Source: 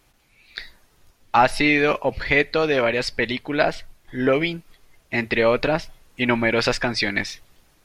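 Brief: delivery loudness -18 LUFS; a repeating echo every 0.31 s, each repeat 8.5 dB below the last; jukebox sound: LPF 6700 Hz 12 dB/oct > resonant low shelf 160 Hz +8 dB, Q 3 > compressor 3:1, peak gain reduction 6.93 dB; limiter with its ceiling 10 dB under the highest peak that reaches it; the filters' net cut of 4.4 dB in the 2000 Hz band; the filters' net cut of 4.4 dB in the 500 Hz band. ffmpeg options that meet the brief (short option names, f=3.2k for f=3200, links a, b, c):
-af "equalizer=f=500:t=o:g=-4,equalizer=f=2k:t=o:g=-5,alimiter=limit=-15.5dB:level=0:latency=1,lowpass=6.7k,lowshelf=f=160:t=q:w=3:g=8,aecho=1:1:310|620|930|1240:0.376|0.143|0.0543|0.0206,acompressor=threshold=-24dB:ratio=3,volume=11dB"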